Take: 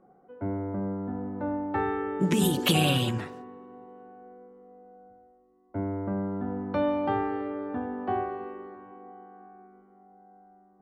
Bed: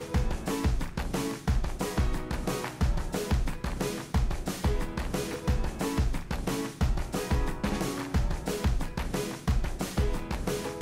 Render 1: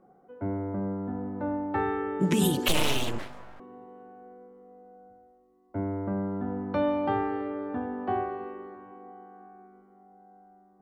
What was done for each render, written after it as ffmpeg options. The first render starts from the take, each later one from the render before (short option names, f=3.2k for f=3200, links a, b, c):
-filter_complex "[0:a]asettb=1/sr,asplit=3[a][b][c];[a]atrim=end=2.684[d];[b]atrim=start=2.68:end=3.6,asetpts=PTS-STARTPTS,afade=t=in:d=0.004:c=qsin,afade=t=out:st=0.916:d=0.004:c=qsin,aeval=exprs='abs(val(0))':c=same[e];[c]atrim=start=3.596[f];[d][e]acrossfade=d=0.004:c1=hsin:c2=qsin[g];[g][f]acrossfade=d=0.004:c1=qsin:c2=hsin"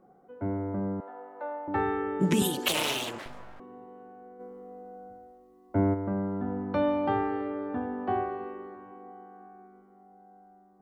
-filter_complex "[0:a]asettb=1/sr,asplit=3[a][b][c];[a]atrim=end=1.004[d];[b]atrim=start=1:end=1.68,asetpts=PTS-STARTPTS,afade=t=in:d=0.004:c=qsin,afade=t=out:st=0.676:d=0.004:c=qsin,highpass=f=510:w=0.5412,highpass=f=510:w=1.3066[e];[c]atrim=start=1.676[f];[d][e]acrossfade=d=0.004:c1=hsin:c2=qsin[g];[g][f]acrossfade=d=0.004:c1=qsin:c2=hsin,asettb=1/sr,asplit=3[h][i][j];[h]atrim=end=2.424[k];[i]atrim=start=2.42:end=3.26,asetpts=PTS-STARTPTS,afade=t=in:d=0.004:c=qsin,afade=t=out:st=0.836:d=0.004:c=qsin,highpass=f=440:p=1[l];[j]atrim=start=3.256[m];[k][l]acrossfade=d=0.004:c1=hsin:c2=qsin[n];[n][m]acrossfade=d=0.004:c1=qsin:c2=hsin,asplit=3[o][p][q];[o]afade=t=out:st=4.39:d=0.02[r];[p]acontrast=70,afade=t=in:st=4.39:d=0.02,afade=t=out:st=5.93:d=0.02[s];[q]afade=t=in:st=5.93:d=0.02[t];[r][s][t]amix=inputs=3:normalize=0"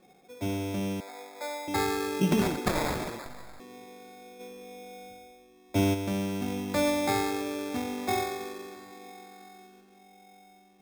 -af "acrusher=samples=15:mix=1:aa=0.000001"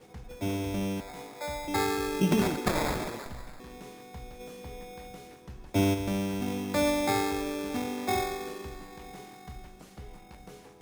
-filter_complex "[1:a]volume=-18dB[a];[0:a][a]amix=inputs=2:normalize=0"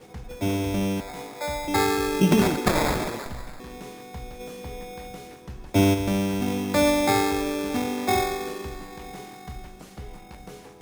-af "volume=6dB"